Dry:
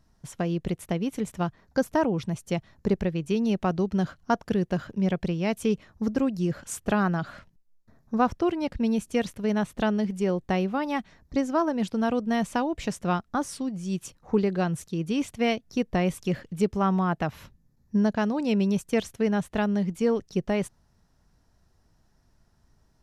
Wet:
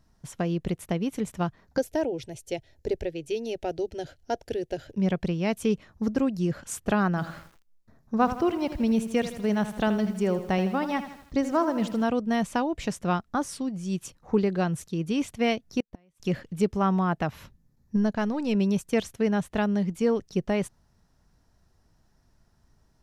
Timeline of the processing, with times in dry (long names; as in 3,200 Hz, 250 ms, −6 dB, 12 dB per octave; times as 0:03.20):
0:01.78–0:04.96: phaser with its sweep stopped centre 470 Hz, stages 4
0:07.09–0:12.03: feedback echo at a low word length 80 ms, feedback 55%, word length 8 bits, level −11 dB
0:15.80–0:16.20: gate with flip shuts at −19 dBFS, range −38 dB
0:17.96–0:18.55: gain on one half-wave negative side −3 dB